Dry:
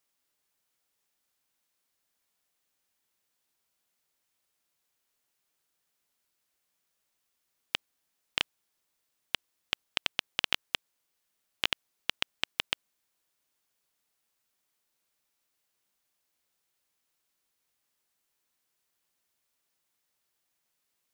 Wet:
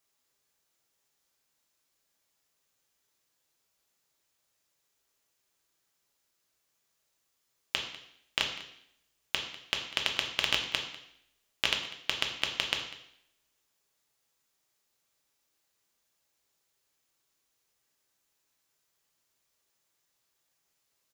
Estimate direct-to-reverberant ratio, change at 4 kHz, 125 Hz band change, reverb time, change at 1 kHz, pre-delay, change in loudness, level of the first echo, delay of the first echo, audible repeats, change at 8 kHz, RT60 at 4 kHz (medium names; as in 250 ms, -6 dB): 1.5 dB, +2.5 dB, +4.0 dB, 0.75 s, +2.5 dB, 3 ms, +2.0 dB, -18.0 dB, 197 ms, 1, +4.0 dB, 0.75 s